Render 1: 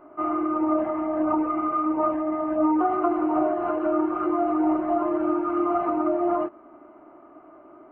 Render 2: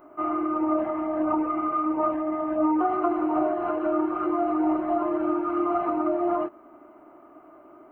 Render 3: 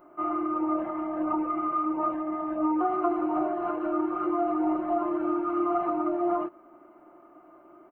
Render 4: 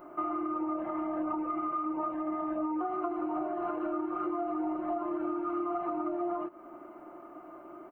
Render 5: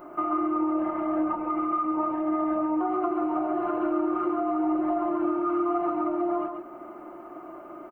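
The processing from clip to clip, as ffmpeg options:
-af "aemphasis=mode=production:type=50kf,volume=-1.5dB"
-af "aecho=1:1:5.7:0.39,volume=-4dB"
-af "acompressor=threshold=-36dB:ratio=6,volume=5dB"
-af "aecho=1:1:138:0.531,volume=5dB"

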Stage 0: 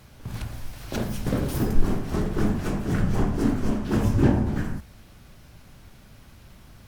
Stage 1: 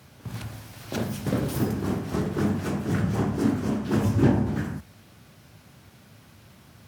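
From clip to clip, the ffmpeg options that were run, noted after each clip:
-af "highpass=f=84:w=0.5412,highpass=f=84:w=1.3066"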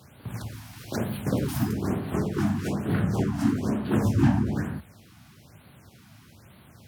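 -af "afftfilt=real='re*(1-between(b*sr/1024,420*pow(6700/420,0.5+0.5*sin(2*PI*1.1*pts/sr))/1.41,420*pow(6700/420,0.5+0.5*sin(2*PI*1.1*pts/sr))*1.41))':imag='im*(1-between(b*sr/1024,420*pow(6700/420,0.5+0.5*sin(2*PI*1.1*pts/sr))/1.41,420*pow(6700/420,0.5+0.5*sin(2*PI*1.1*pts/sr))*1.41))':win_size=1024:overlap=0.75"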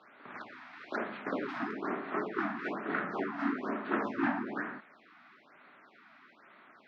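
-af "highpass=f=320:w=0.5412,highpass=f=320:w=1.3066,equalizer=f=350:t=q:w=4:g=-4,equalizer=f=500:t=q:w=4:g=-8,equalizer=f=820:t=q:w=4:g=-3,equalizer=f=1.3k:t=q:w=4:g=6,equalizer=f=1.9k:t=q:w=4:g=4,equalizer=f=3k:t=q:w=4:g=-7,lowpass=f=3.1k:w=0.5412,lowpass=f=3.1k:w=1.3066"

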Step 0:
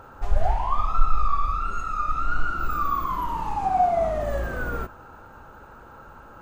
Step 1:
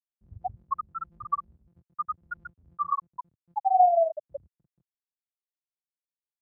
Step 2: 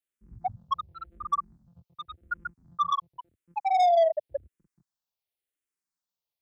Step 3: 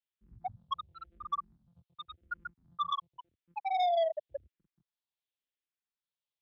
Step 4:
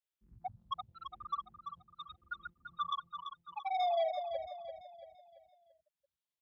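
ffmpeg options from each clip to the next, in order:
-af "afftfilt=real='re*gte(hypot(re,im),0.631)':imag='im*gte(hypot(re,im),0.631)':win_size=1024:overlap=0.75,highpass=f=120:w=0.5412,highpass=f=120:w=1.3066,volume=2dB"
-filter_complex "[0:a]asoftclip=type=tanh:threshold=-23.5dB,asplit=2[a][b];[b]afreqshift=-0.91[c];[a][c]amix=inputs=2:normalize=1,volume=7dB"
-af "lowpass=f=3.5k:t=q:w=2.4,volume=-8dB"
-af "aecho=1:1:338|676|1014|1352|1690:0.398|0.171|0.0736|0.0317|0.0136,volume=-3.5dB"

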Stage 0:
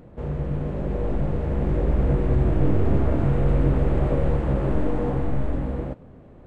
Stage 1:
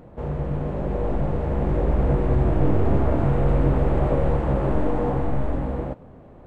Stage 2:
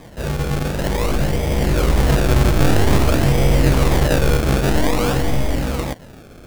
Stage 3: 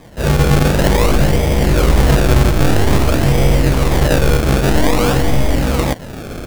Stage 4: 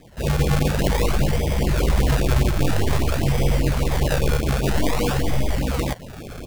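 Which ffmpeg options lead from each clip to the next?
-af "equalizer=f=840:t=o:w=1.3:g=5.5"
-af "acrusher=samples=31:mix=1:aa=0.000001:lfo=1:lforange=31:lforate=0.51,volume=5dB"
-af "dynaudnorm=f=140:g=3:m=16dB,volume=-1dB"
-af "afftfilt=real='re*(1-between(b*sr/1024,240*pow(1700/240,0.5+0.5*sin(2*PI*5*pts/sr))/1.41,240*pow(1700/240,0.5+0.5*sin(2*PI*5*pts/sr))*1.41))':imag='im*(1-between(b*sr/1024,240*pow(1700/240,0.5+0.5*sin(2*PI*5*pts/sr))/1.41,240*pow(1700/240,0.5+0.5*sin(2*PI*5*pts/sr))*1.41))':win_size=1024:overlap=0.75,volume=-7dB"

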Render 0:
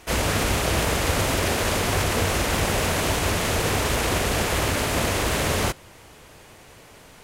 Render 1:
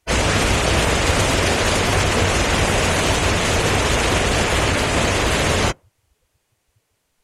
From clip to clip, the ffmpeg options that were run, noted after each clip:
-af "afftdn=nr=30:nf=-32,highshelf=f=3.4k:g=8.5,volume=5dB"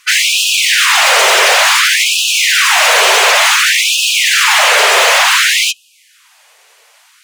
-filter_complex "[0:a]lowshelf=f=380:g=-7.5,asplit=2[a][b];[b]highpass=f=720:p=1,volume=29dB,asoftclip=type=tanh:threshold=-5.5dB[c];[a][c]amix=inputs=2:normalize=0,lowpass=f=5.2k:p=1,volume=-6dB,afftfilt=real='re*gte(b*sr/1024,350*pow(2500/350,0.5+0.5*sin(2*PI*0.56*pts/sr)))':imag='im*gte(b*sr/1024,350*pow(2500/350,0.5+0.5*sin(2*PI*0.56*pts/sr)))':win_size=1024:overlap=0.75,volume=4dB"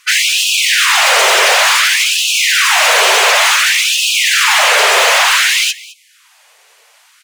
-af "aecho=1:1:212:0.1,volume=-1dB"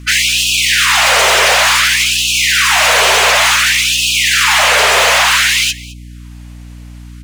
-af "aeval=exprs='val(0)+0.0316*(sin(2*PI*60*n/s)+sin(2*PI*2*60*n/s)/2+sin(2*PI*3*60*n/s)/3+sin(2*PI*4*60*n/s)/4+sin(2*PI*5*60*n/s)/5)':c=same"

